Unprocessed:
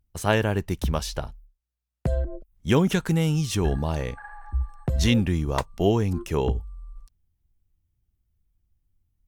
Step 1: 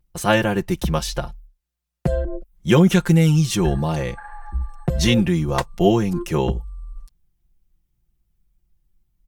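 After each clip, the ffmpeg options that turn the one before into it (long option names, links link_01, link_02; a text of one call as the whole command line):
ffmpeg -i in.wav -af "aecho=1:1:5.7:0.84,volume=3dB" out.wav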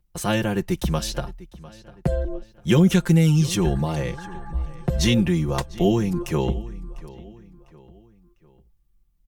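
ffmpeg -i in.wav -filter_complex "[0:a]acrossover=split=380|3000[link_01][link_02][link_03];[link_02]acompressor=threshold=-26dB:ratio=2.5[link_04];[link_01][link_04][link_03]amix=inputs=3:normalize=0,asplit=2[link_05][link_06];[link_06]adelay=700,lowpass=frequency=5000:poles=1,volume=-19dB,asplit=2[link_07][link_08];[link_08]adelay=700,lowpass=frequency=5000:poles=1,volume=0.44,asplit=2[link_09][link_10];[link_10]adelay=700,lowpass=frequency=5000:poles=1,volume=0.44[link_11];[link_05][link_07][link_09][link_11]amix=inputs=4:normalize=0,volume=-1.5dB" out.wav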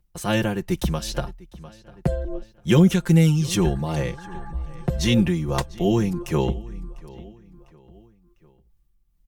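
ffmpeg -i in.wav -af "tremolo=f=2.5:d=0.45,volume=1.5dB" out.wav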